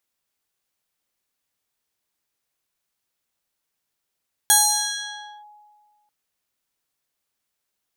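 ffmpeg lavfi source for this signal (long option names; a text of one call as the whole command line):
ffmpeg -f lavfi -i "aevalsrc='0.299*pow(10,-3*t/1.73)*sin(2*PI*838*t+4.7*clip(1-t/0.94,0,1)*sin(2*PI*2.97*838*t))':duration=1.59:sample_rate=44100" out.wav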